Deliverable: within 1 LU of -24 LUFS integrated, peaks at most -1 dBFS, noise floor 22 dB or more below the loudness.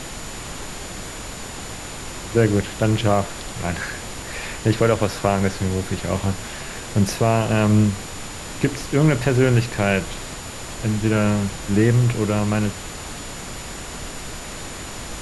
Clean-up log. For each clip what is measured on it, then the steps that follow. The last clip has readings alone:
steady tone 7000 Hz; tone level -41 dBFS; noise floor -34 dBFS; noise floor target -45 dBFS; loudness -22.5 LUFS; peak -3.5 dBFS; loudness target -24.0 LUFS
-> notch 7000 Hz, Q 30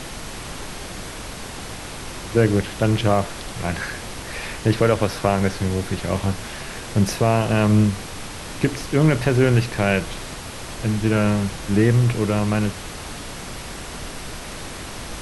steady tone none; noise floor -34 dBFS; noise floor target -43 dBFS
-> noise print and reduce 9 dB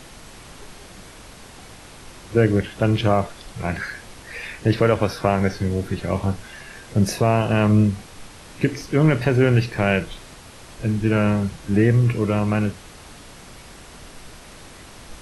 noise floor -43 dBFS; loudness -21.0 LUFS; peak -3.5 dBFS; loudness target -24.0 LUFS
-> gain -3 dB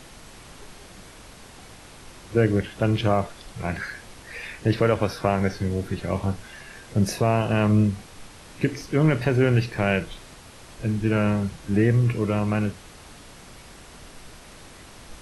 loudness -24.0 LUFS; peak -6.5 dBFS; noise floor -46 dBFS

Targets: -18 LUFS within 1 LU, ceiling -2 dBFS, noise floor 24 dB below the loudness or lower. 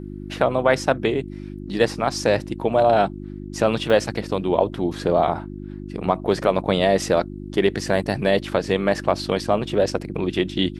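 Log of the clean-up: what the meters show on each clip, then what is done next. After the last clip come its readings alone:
dropouts 1; longest dropout 1.1 ms; hum 50 Hz; harmonics up to 350 Hz; hum level -32 dBFS; loudness -21.5 LUFS; peak -3.0 dBFS; loudness target -18.0 LUFS
-> interpolate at 3.9, 1.1 ms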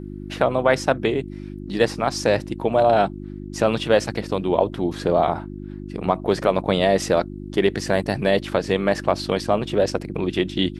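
dropouts 0; hum 50 Hz; harmonics up to 350 Hz; hum level -32 dBFS
-> de-hum 50 Hz, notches 7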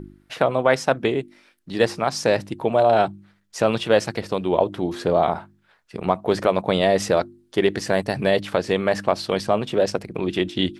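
hum none; loudness -22.0 LUFS; peak -3.0 dBFS; loudness target -18.0 LUFS
-> gain +4 dB; limiter -2 dBFS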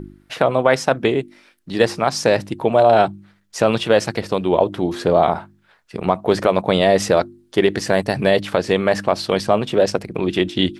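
loudness -18.5 LUFS; peak -2.0 dBFS; noise floor -59 dBFS

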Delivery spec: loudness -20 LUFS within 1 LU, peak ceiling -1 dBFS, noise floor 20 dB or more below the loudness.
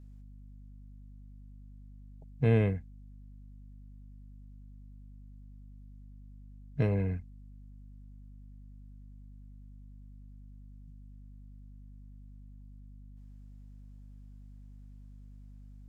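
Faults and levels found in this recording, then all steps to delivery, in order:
hum 50 Hz; harmonics up to 250 Hz; hum level -48 dBFS; loudness -30.5 LUFS; peak -15.5 dBFS; loudness target -20.0 LUFS
-> de-hum 50 Hz, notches 5; gain +10.5 dB

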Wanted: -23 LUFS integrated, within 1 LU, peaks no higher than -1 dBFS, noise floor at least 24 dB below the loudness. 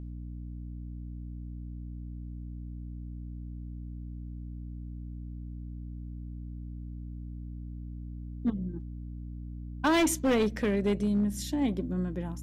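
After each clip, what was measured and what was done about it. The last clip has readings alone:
clipped 0.8%; flat tops at -21.0 dBFS; hum 60 Hz; harmonics up to 300 Hz; hum level -37 dBFS; loudness -34.0 LUFS; peak -21.0 dBFS; loudness target -23.0 LUFS
-> clip repair -21 dBFS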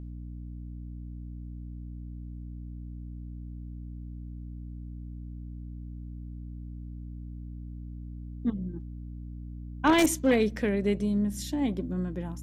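clipped 0.0%; hum 60 Hz; harmonics up to 300 Hz; hum level -37 dBFS
-> de-hum 60 Hz, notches 5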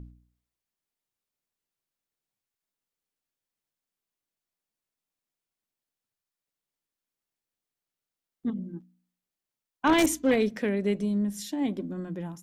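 hum none; loudness -28.0 LUFS; peak -11.0 dBFS; loudness target -23.0 LUFS
-> gain +5 dB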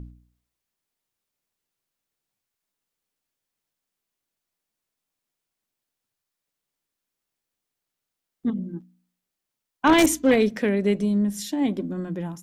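loudness -23.0 LUFS; peak -6.0 dBFS; noise floor -85 dBFS

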